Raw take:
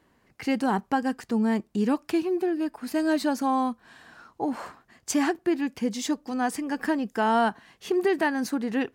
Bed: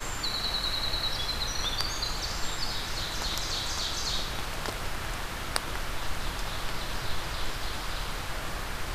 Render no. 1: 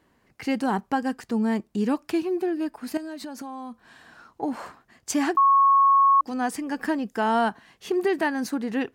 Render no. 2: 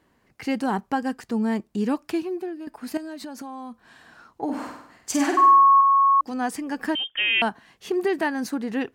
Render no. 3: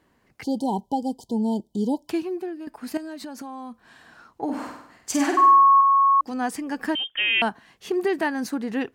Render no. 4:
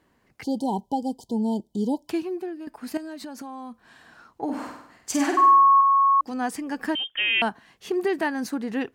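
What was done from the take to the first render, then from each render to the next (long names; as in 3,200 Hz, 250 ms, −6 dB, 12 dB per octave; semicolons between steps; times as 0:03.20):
0:02.97–0:04.43: downward compressor 16 to 1, threshold −32 dBFS; 0:05.37–0:06.21: beep over 1,100 Hz −14 dBFS
0:02.07–0:02.67: fade out, to −11 dB; 0:04.44–0:05.81: flutter between parallel walls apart 8.4 metres, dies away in 0.69 s; 0:06.95–0:07.42: voice inversion scrambler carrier 3,400 Hz
0:00.44–0:02.09: time-frequency box erased 1,000–3,000 Hz
level −1 dB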